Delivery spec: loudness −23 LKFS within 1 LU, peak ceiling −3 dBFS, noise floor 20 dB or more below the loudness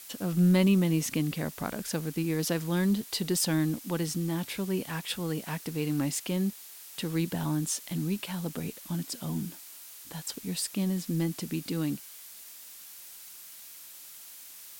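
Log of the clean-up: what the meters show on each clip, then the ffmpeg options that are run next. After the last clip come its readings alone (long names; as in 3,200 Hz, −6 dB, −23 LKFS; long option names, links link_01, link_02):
background noise floor −48 dBFS; target noise floor −51 dBFS; integrated loudness −30.5 LKFS; sample peak −15.0 dBFS; target loudness −23.0 LKFS
→ -af "afftdn=noise_reduction=6:noise_floor=-48"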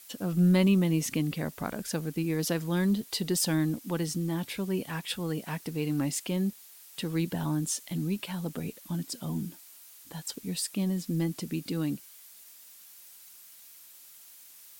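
background noise floor −52 dBFS; integrated loudness −30.5 LKFS; sample peak −15.0 dBFS; target loudness −23.0 LKFS
→ -af "volume=7.5dB"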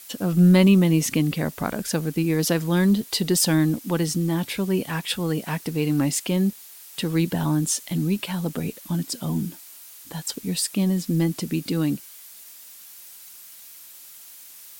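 integrated loudness −23.0 LKFS; sample peak −7.5 dBFS; background noise floor −45 dBFS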